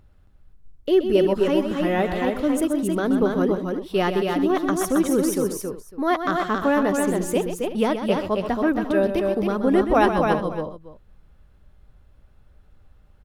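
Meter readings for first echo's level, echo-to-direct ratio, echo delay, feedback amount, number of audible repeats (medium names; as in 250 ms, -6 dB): -9.0 dB, -2.5 dB, 127 ms, no regular repeats, 4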